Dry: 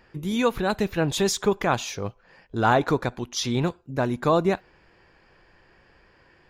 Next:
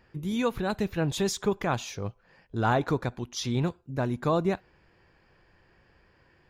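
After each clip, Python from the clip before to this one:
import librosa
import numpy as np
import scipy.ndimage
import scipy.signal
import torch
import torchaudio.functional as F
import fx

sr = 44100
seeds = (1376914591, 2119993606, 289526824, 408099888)

y = fx.peak_eq(x, sr, hz=99.0, db=5.5, octaves=2.3)
y = F.gain(torch.from_numpy(y), -6.0).numpy()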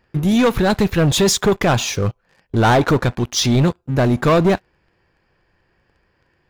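y = fx.leveller(x, sr, passes=3)
y = F.gain(torch.from_numpy(y), 5.0).numpy()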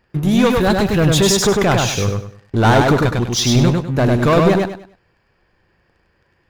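y = fx.echo_feedback(x, sr, ms=100, feedback_pct=29, wet_db=-3)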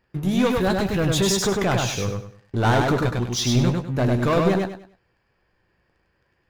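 y = fx.doubler(x, sr, ms=16.0, db=-11.0)
y = F.gain(torch.from_numpy(y), -7.0).numpy()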